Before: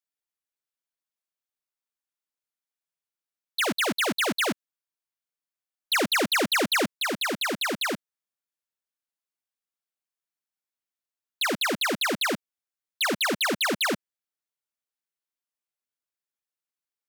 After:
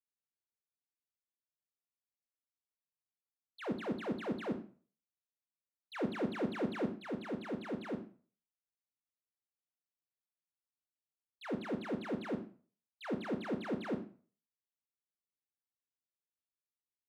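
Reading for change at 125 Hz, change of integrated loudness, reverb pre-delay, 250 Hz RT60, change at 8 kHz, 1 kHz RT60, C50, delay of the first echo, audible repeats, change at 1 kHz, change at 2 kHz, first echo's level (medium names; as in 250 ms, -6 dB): -4.0 dB, -14.0 dB, 21 ms, 0.35 s, under -30 dB, 0.40 s, 10.5 dB, no echo, no echo, -16.0 dB, -21.5 dB, no echo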